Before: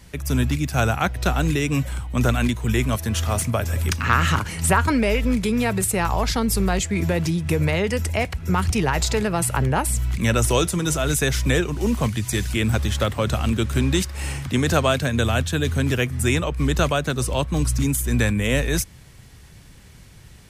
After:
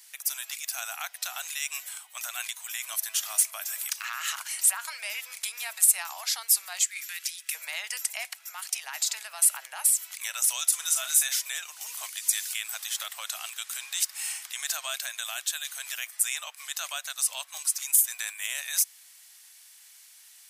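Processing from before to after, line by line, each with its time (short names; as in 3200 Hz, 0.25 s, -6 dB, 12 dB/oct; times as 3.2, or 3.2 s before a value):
6.83–7.55 inverse Chebyshev high-pass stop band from 420 Hz, stop band 60 dB
8.43–9.36 compressor 2.5:1, threshold -22 dBFS
10.68–11.33 doubler 39 ms -8.5 dB
whole clip: limiter -13.5 dBFS; elliptic high-pass 680 Hz, stop band 80 dB; differentiator; gain +4.5 dB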